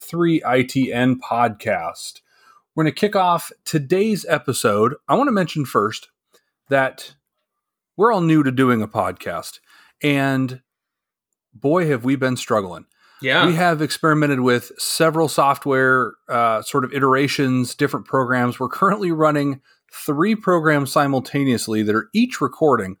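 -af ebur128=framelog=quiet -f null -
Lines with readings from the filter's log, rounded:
Integrated loudness:
  I:         -18.8 LUFS
  Threshold: -29.4 LUFS
Loudness range:
  LRA:         3.8 LU
  Threshold: -39.6 LUFS
  LRA low:   -21.7 LUFS
  LRA high:  -17.9 LUFS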